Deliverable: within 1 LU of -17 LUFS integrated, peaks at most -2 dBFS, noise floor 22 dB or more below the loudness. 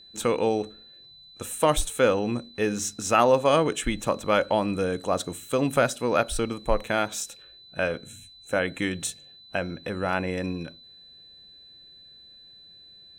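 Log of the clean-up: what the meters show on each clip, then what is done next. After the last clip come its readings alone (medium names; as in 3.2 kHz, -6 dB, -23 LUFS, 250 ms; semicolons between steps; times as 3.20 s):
steady tone 4 kHz; tone level -48 dBFS; loudness -26.0 LUFS; peak level -6.5 dBFS; loudness target -17.0 LUFS
-> band-stop 4 kHz, Q 30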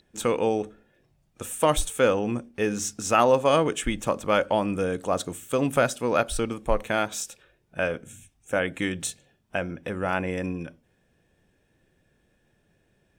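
steady tone not found; loudness -26.0 LUFS; peak level -6.5 dBFS; loudness target -17.0 LUFS
-> trim +9 dB; peak limiter -2 dBFS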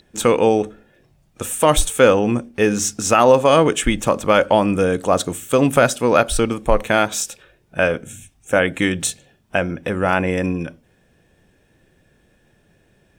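loudness -17.5 LUFS; peak level -2.0 dBFS; noise floor -59 dBFS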